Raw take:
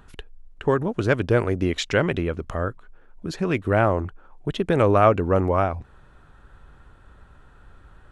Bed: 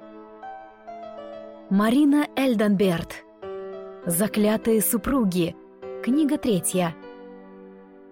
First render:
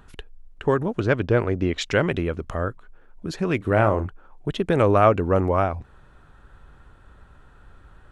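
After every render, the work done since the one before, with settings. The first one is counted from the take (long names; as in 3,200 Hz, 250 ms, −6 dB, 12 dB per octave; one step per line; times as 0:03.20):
0:01.00–0:01.81: high-frequency loss of the air 91 metres
0:03.57–0:04.07: double-tracking delay 37 ms −10 dB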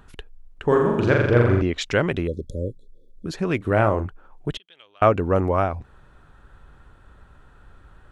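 0:00.64–0:01.62: flutter between parallel walls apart 7.2 metres, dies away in 0.95 s
0:02.27–0:03.26: linear-phase brick-wall band-stop 590–3,300 Hz
0:04.57–0:05.02: resonant band-pass 3,200 Hz, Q 15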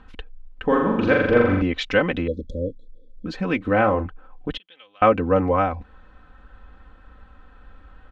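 Chebyshev low-pass filter 3,400 Hz, order 2
comb filter 3.9 ms, depth 86%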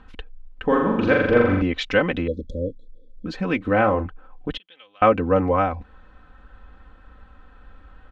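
no processing that can be heard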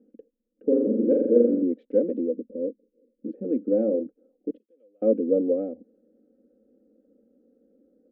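adaptive Wiener filter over 9 samples
elliptic band-pass filter 220–530 Hz, stop band 40 dB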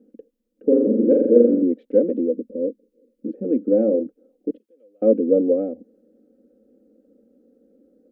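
level +5 dB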